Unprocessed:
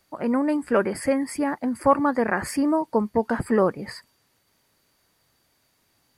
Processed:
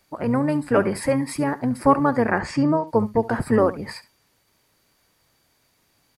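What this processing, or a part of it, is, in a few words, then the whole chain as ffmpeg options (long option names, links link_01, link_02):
octave pedal: -filter_complex "[0:a]asplit=3[link_01][link_02][link_03];[link_01]afade=type=out:start_time=2.38:duration=0.02[link_04];[link_02]lowpass=frequency=6600:width=0.5412,lowpass=frequency=6600:width=1.3066,afade=type=in:start_time=2.38:duration=0.02,afade=type=out:start_time=2.86:duration=0.02[link_05];[link_03]afade=type=in:start_time=2.86:duration=0.02[link_06];[link_04][link_05][link_06]amix=inputs=3:normalize=0,aecho=1:1:71:0.133,asplit=2[link_07][link_08];[link_08]asetrate=22050,aresample=44100,atempo=2,volume=-8dB[link_09];[link_07][link_09]amix=inputs=2:normalize=0,volume=1.5dB"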